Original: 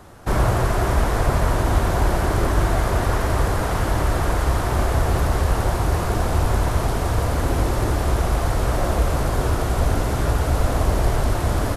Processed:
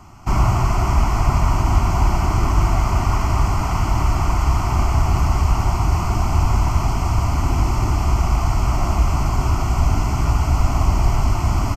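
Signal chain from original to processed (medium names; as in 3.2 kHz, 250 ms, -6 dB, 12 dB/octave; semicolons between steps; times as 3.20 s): static phaser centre 2.5 kHz, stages 8; resampled via 32 kHz; trim +3.5 dB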